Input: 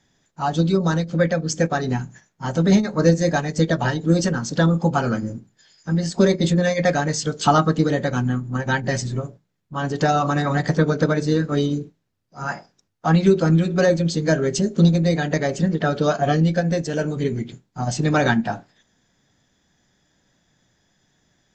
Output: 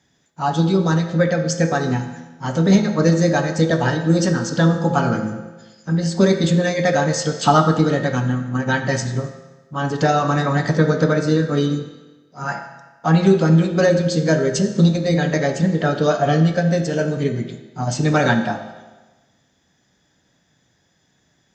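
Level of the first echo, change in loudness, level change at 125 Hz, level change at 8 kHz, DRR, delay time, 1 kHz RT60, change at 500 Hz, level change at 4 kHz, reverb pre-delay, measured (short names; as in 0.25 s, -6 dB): none, +2.0 dB, +2.0 dB, +1.5 dB, 5.0 dB, none, 1.2 s, +2.0 dB, +2.0 dB, 6 ms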